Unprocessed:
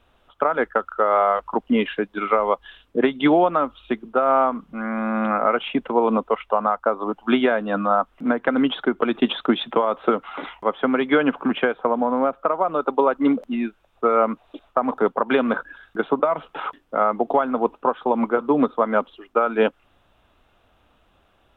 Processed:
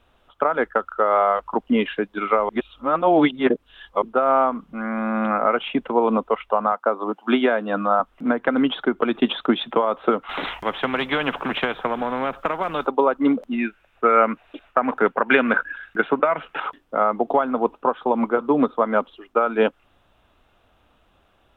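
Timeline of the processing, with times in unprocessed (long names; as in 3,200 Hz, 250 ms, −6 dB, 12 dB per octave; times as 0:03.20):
0:02.49–0:04.02: reverse
0:06.72–0:08.00: high-pass filter 190 Hz 24 dB per octave
0:10.29–0:12.87: every bin compressed towards the loudest bin 2 to 1
0:13.58–0:16.60: flat-topped bell 2,000 Hz +9 dB 1.2 octaves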